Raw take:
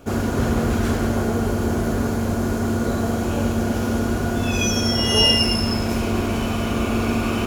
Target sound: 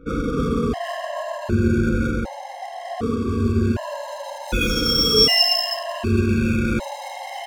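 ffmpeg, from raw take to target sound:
ffmpeg -i in.wav -af "afftfilt=real='re*pow(10,20/40*sin(2*PI*(1.4*log(max(b,1)*sr/1024/100)/log(2)-(-0.42)*(pts-256)/sr)))':imag='im*pow(10,20/40*sin(2*PI*(1.4*log(max(b,1)*sr/1024/100)/log(2)-(-0.42)*(pts-256)/sr)))':win_size=1024:overlap=0.75,adynamicsmooth=sensitivity=4.5:basefreq=670,afftfilt=real='re*gt(sin(2*PI*0.66*pts/sr)*(1-2*mod(floor(b*sr/1024/540),2)),0)':imag='im*gt(sin(2*PI*0.66*pts/sr)*(1-2*mod(floor(b*sr/1024/540),2)),0)':win_size=1024:overlap=0.75,volume=-2dB" out.wav

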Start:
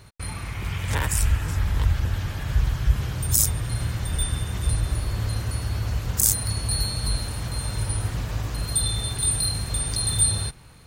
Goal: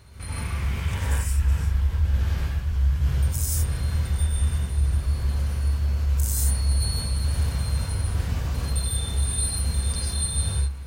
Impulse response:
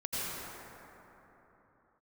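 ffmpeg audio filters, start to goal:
-filter_complex "[0:a]equalizer=frequency=69:width=5.4:gain=11.5,areverse,acompressor=threshold=-25dB:ratio=6,areverse[link_01];[1:a]atrim=start_sample=2205,afade=type=out:start_time=0.23:duration=0.01,atrim=end_sample=10584[link_02];[link_01][link_02]afir=irnorm=-1:irlink=0"

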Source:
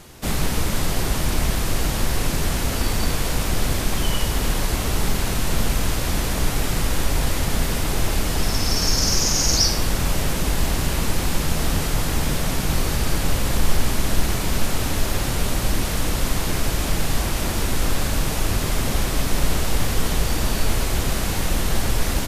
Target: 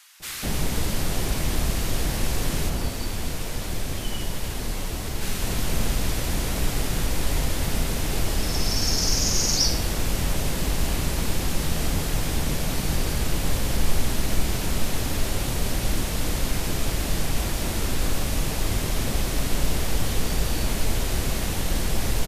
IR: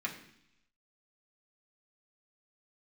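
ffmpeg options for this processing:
-filter_complex "[0:a]asplit=3[link_01][link_02][link_03];[link_01]afade=type=out:start_time=2.68:duration=0.02[link_04];[link_02]flanger=delay=8.5:depth=3.1:regen=-49:speed=1.8:shape=sinusoidal,afade=type=in:start_time=2.68:duration=0.02,afade=type=out:start_time=5.21:duration=0.02[link_05];[link_03]afade=type=in:start_time=5.21:duration=0.02[link_06];[link_04][link_05][link_06]amix=inputs=3:normalize=0,acrossover=split=1200[link_07][link_08];[link_07]adelay=200[link_09];[link_09][link_08]amix=inputs=2:normalize=0,volume=-3dB"

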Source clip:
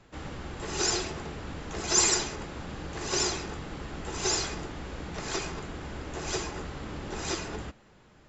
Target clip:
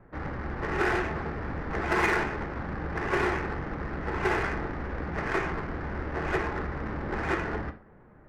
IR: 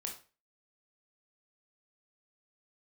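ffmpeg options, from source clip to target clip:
-filter_complex "[0:a]asoftclip=type=tanh:threshold=-12dB,lowpass=frequency=1900:width_type=q:width=2.3,adynamicsmooth=sensitivity=6:basefreq=1000,asplit=2[link_01][link_02];[1:a]atrim=start_sample=2205,lowpass=3400[link_03];[link_02][link_03]afir=irnorm=-1:irlink=0,volume=-1dB[link_04];[link_01][link_04]amix=inputs=2:normalize=0"

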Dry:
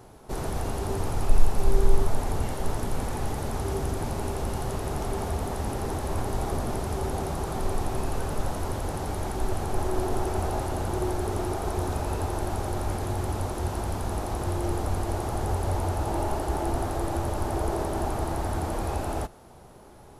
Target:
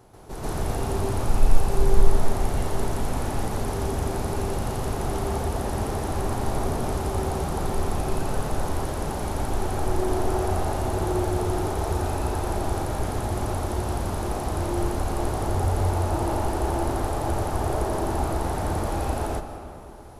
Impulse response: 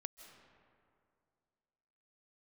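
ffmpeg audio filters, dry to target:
-filter_complex "[0:a]asplit=2[link_01][link_02];[1:a]atrim=start_sample=2205,adelay=135[link_03];[link_02][link_03]afir=irnorm=-1:irlink=0,volume=10dB[link_04];[link_01][link_04]amix=inputs=2:normalize=0,volume=-4dB"

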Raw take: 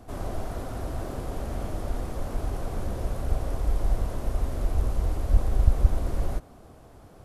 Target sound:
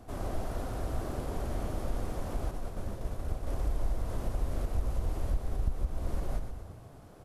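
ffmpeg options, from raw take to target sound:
ffmpeg -i in.wav -filter_complex "[0:a]acompressor=threshold=-23dB:ratio=6,asettb=1/sr,asplit=3[link_01][link_02][link_03];[link_01]atrim=end=2.514[link_04];[link_02]atrim=start=2.51:end=3.47,asetpts=PTS-STARTPTS,afade=type=in:duration=0.004:curve=qsin,afade=type=out:start_time=0.956:duration=0.004:curve=qsin,agate=range=-33dB:threshold=-24dB:ratio=3:detection=peak[link_05];[link_03]atrim=start=3.466[link_06];[link_04][link_05]acrossfade=duration=0.004:curve1=hsin:curve2=qsin[link_07];[link_07][link_06]acrossfade=duration=0.004:curve1=qsin:curve2=hsin,asplit=8[link_08][link_09][link_10][link_11][link_12][link_13][link_14][link_15];[link_09]adelay=121,afreqshift=-32,volume=-8dB[link_16];[link_10]adelay=242,afreqshift=-64,volume=-13dB[link_17];[link_11]adelay=363,afreqshift=-96,volume=-18.1dB[link_18];[link_12]adelay=484,afreqshift=-128,volume=-23.1dB[link_19];[link_13]adelay=605,afreqshift=-160,volume=-28.1dB[link_20];[link_14]adelay=726,afreqshift=-192,volume=-33.2dB[link_21];[link_15]adelay=847,afreqshift=-224,volume=-38.2dB[link_22];[link_08][link_16][link_17][link_18][link_19][link_20][link_21][link_22]amix=inputs=8:normalize=0,volume=-3dB" out.wav

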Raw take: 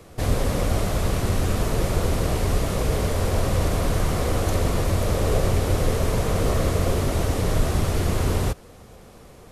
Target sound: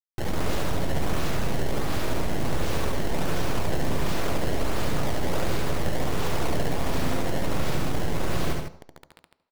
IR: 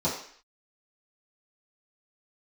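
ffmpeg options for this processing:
-filter_complex "[0:a]alimiter=limit=-18.5dB:level=0:latency=1:release=163,acrusher=samples=21:mix=1:aa=0.000001:lfo=1:lforange=33.6:lforate=1.4,aeval=exprs='abs(val(0))':channel_layout=same,acrusher=bits=5:mix=0:aa=0.000001,aecho=1:1:69.97|154.5:0.708|0.447,asplit=2[link_01][link_02];[1:a]atrim=start_sample=2205,adelay=72[link_03];[link_02][link_03]afir=irnorm=-1:irlink=0,volume=-24.5dB[link_04];[link_01][link_04]amix=inputs=2:normalize=0"

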